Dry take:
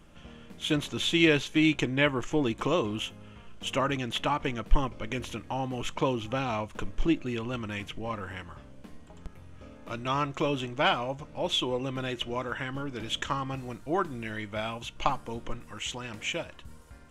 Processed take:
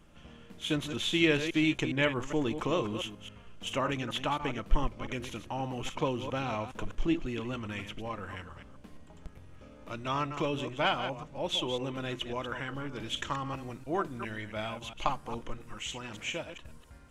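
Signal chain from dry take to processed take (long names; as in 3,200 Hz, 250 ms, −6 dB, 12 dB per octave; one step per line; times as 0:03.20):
delay that plays each chunk backwards 137 ms, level −9 dB
level −3.5 dB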